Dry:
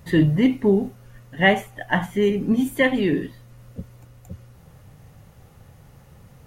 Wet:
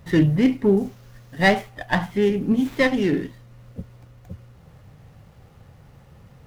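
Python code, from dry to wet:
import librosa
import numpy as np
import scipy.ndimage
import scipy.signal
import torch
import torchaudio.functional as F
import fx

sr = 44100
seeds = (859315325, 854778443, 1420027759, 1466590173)

y = fx.high_shelf_res(x, sr, hz=4400.0, db=9.0, q=1.5, at=(0.77, 1.45))
y = fx.running_max(y, sr, window=5)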